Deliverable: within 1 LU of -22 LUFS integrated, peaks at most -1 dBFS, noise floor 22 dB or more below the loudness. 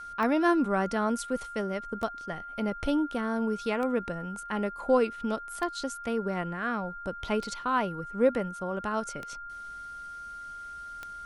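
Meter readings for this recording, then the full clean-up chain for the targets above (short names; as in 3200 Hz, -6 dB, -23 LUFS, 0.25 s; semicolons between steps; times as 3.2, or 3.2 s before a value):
clicks 7; steady tone 1400 Hz; tone level -39 dBFS; loudness -30.0 LUFS; peak -12.0 dBFS; loudness target -22.0 LUFS
-> de-click; notch 1400 Hz, Q 30; gain +8 dB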